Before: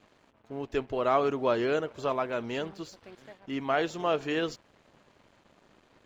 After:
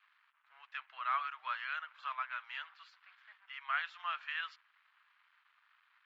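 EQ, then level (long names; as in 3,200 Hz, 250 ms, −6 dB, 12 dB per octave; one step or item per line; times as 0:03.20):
Butterworth high-pass 1,200 Hz 36 dB per octave
high-frequency loss of the air 410 metres
+2.0 dB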